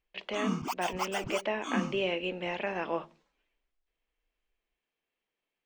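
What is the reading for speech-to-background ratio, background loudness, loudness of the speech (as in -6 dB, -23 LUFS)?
1.0 dB, -35.5 LUFS, -34.5 LUFS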